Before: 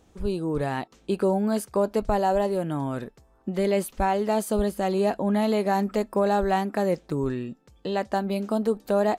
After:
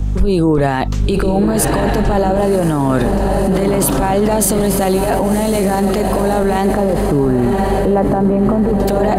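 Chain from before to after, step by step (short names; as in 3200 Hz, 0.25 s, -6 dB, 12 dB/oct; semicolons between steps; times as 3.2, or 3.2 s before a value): 6.7–8.8 LPF 1100 Hz 12 dB/oct; negative-ratio compressor -26 dBFS, ratio -0.5; hum 50 Hz, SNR 11 dB; diffused feedback echo 1.062 s, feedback 51%, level -6.5 dB; maximiser +28.5 dB; three-band expander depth 40%; gain -5.5 dB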